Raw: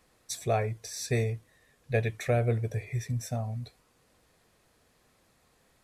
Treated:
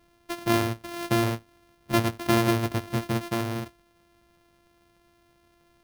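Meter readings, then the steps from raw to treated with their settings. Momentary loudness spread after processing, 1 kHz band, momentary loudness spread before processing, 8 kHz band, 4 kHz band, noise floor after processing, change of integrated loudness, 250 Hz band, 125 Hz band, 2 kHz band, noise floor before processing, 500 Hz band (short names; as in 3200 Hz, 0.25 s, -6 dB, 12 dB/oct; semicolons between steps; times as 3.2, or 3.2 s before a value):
12 LU, +8.0 dB, 11 LU, +1.0 dB, +9.5 dB, -64 dBFS, +4.5 dB, +12.0 dB, 0.0 dB, +6.5 dB, -68 dBFS, +2.0 dB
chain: sample sorter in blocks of 128 samples; careless resampling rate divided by 3×, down filtered, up hold; gain +4 dB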